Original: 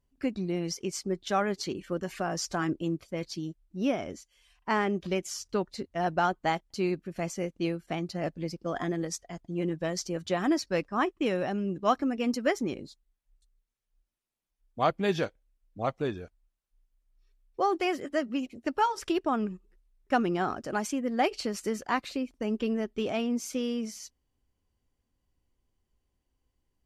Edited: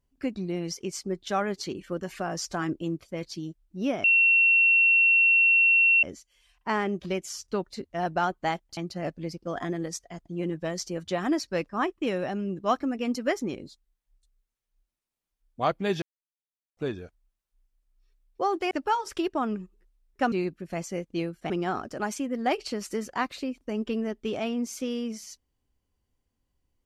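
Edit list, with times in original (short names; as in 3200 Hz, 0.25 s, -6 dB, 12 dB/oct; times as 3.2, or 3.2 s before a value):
4.04 add tone 2720 Hz -16.5 dBFS 1.99 s
6.78–7.96 move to 20.23
15.21–15.96 mute
17.9–18.62 cut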